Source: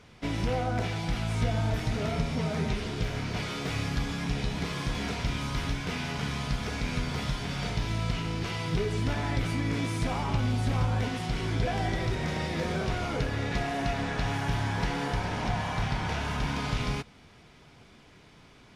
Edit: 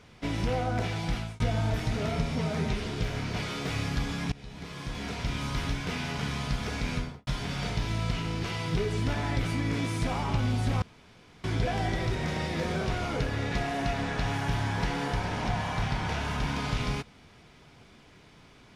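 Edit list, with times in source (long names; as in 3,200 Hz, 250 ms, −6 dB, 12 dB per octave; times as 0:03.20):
0:01.14–0:01.40: fade out
0:04.32–0:05.46: fade in, from −19.5 dB
0:06.92–0:07.27: fade out and dull
0:10.82–0:11.44: fill with room tone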